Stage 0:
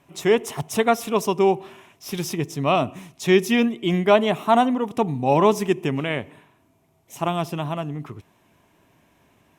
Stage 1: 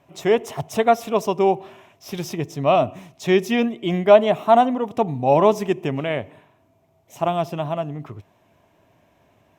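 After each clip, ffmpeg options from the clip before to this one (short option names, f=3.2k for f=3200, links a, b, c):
-af "equalizer=f=100:t=o:w=0.67:g=5,equalizer=f=630:t=o:w=0.67:g=8,equalizer=f=10k:t=o:w=0.67:g=-7,volume=-2dB"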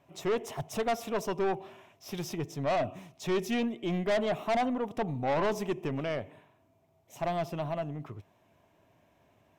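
-af "aeval=exprs='(tanh(7.94*val(0)+0.15)-tanh(0.15))/7.94':c=same,volume=-6.5dB"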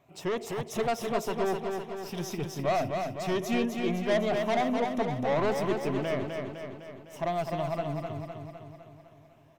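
-filter_complex "[0:a]afftfilt=real='re*pow(10,6/40*sin(2*PI*(1.2*log(max(b,1)*sr/1024/100)/log(2)-(2.6)*(pts-256)/sr)))':imag='im*pow(10,6/40*sin(2*PI*(1.2*log(max(b,1)*sr/1024/100)/log(2)-(2.6)*(pts-256)/sr)))':win_size=1024:overlap=0.75,asplit=2[a][b];[b]aecho=0:1:254|508|762|1016|1270|1524|1778|2032:0.562|0.326|0.189|0.11|0.0636|0.0369|0.0214|0.0124[c];[a][c]amix=inputs=2:normalize=0"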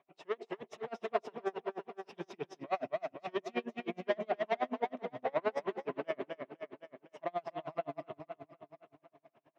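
-af "highpass=320,lowpass=2.9k,aeval=exprs='val(0)*pow(10,-35*(0.5-0.5*cos(2*PI*9.5*n/s))/20)':c=same"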